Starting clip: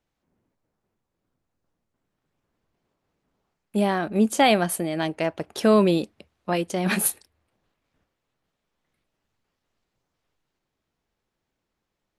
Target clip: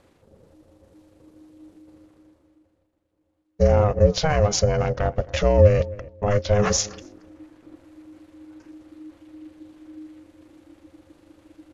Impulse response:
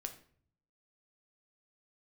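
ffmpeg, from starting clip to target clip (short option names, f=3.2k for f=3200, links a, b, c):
-filter_complex "[0:a]agate=range=-8dB:threshold=-51dB:ratio=16:detection=peak,atempo=1.8,asplit=2[a][b];[b]asoftclip=type=tanh:threshold=-24dB,volume=-11.5dB[c];[a][c]amix=inputs=2:normalize=0,alimiter=limit=-17dB:level=0:latency=1:release=39,equalizer=f=390:t=o:w=0.26:g=14.5,areverse,acompressor=mode=upward:threshold=-40dB:ratio=2.5,areverse,asubboost=boost=7.5:cutoff=54,asetrate=25442,aresample=44100,asplit=2[d][e];[e]adelay=267,lowpass=f=1.3k:p=1,volume=-20.5dB,asplit=2[f][g];[g]adelay=267,lowpass=f=1.3k:p=1,volume=0.19[h];[d][f][h]amix=inputs=3:normalize=0,aeval=exprs='val(0)*sin(2*PI*310*n/s)':c=same,volume=7dB"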